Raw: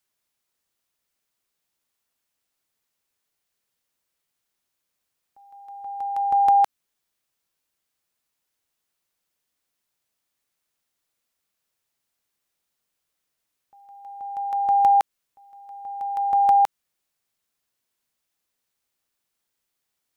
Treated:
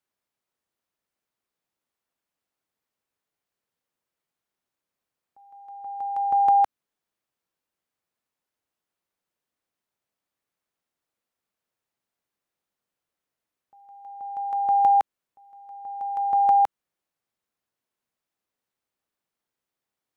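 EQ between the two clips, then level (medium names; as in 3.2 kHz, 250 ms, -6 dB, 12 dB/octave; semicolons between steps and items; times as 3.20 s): bass shelf 76 Hz -9 dB; treble shelf 2.2 kHz -11 dB; 0.0 dB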